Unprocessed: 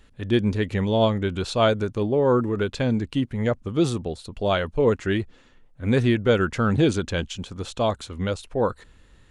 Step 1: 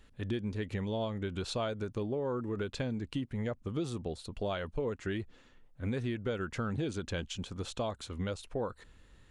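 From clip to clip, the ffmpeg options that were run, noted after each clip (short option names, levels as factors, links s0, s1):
-af "acompressor=threshold=0.0501:ratio=6,volume=0.531"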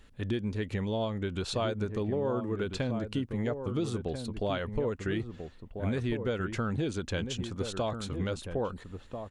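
-filter_complex "[0:a]asplit=2[s0][s1];[s1]adelay=1341,volume=0.447,highshelf=f=4000:g=-30.2[s2];[s0][s2]amix=inputs=2:normalize=0,volume=1.41"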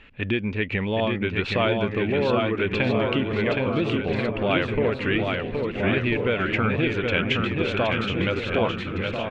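-af "lowpass=f=2500:t=q:w=4.4,lowshelf=f=100:g=-6,aecho=1:1:770|1386|1879|2273|2588:0.631|0.398|0.251|0.158|0.1,volume=2.24"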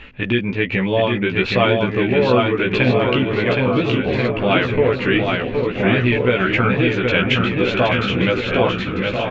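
-filter_complex "[0:a]areverse,acompressor=mode=upward:threshold=0.0562:ratio=2.5,areverse,asplit=2[s0][s1];[s1]adelay=16,volume=0.75[s2];[s0][s2]amix=inputs=2:normalize=0,aresample=16000,aresample=44100,volume=1.68"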